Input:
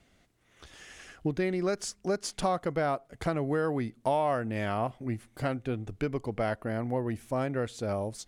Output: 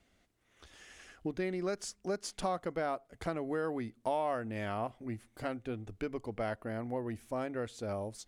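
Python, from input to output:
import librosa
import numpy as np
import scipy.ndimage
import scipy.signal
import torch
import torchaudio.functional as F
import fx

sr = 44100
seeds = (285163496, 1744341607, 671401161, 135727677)

y = fx.peak_eq(x, sr, hz=140.0, db=-13.0, octaves=0.23)
y = y * 10.0 ** (-5.5 / 20.0)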